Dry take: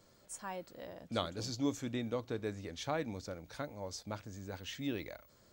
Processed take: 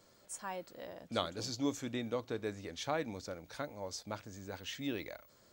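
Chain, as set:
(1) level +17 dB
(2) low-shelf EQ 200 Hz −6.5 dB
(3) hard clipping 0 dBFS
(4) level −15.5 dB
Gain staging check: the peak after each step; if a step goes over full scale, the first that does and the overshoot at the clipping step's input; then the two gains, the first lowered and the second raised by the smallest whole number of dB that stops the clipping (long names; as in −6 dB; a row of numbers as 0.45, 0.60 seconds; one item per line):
−1.5, −2.0, −2.0, −17.5 dBFS
no step passes full scale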